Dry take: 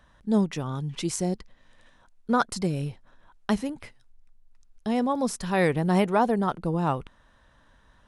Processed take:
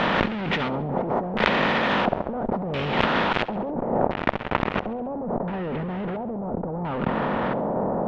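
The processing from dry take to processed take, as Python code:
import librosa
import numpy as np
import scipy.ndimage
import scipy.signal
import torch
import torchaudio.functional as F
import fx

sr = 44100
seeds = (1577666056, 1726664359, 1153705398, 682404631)

y = fx.bin_compress(x, sr, power=0.4)
y = scipy.signal.sosfilt(scipy.signal.butter(2, 150.0, 'highpass', fs=sr, output='sos'), y)
y = fx.fuzz(y, sr, gain_db=40.0, gate_db=-37.0)
y = fx.spacing_loss(y, sr, db_at_10k=35)
y = fx.filter_lfo_lowpass(y, sr, shape='square', hz=0.73, low_hz=700.0, high_hz=3100.0, q=1.7)
y = fx.over_compress(y, sr, threshold_db=-26.0, ratio=-1.0)
y = fx.high_shelf(y, sr, hz=2100.0, db=fx.steps((0.0, 10.5), (3.7, -3.5), (5.16, -9.5)))
y = fx.echo_feedback(y, sr, ms=69, feedback_pct=50, wet_db=-18.0)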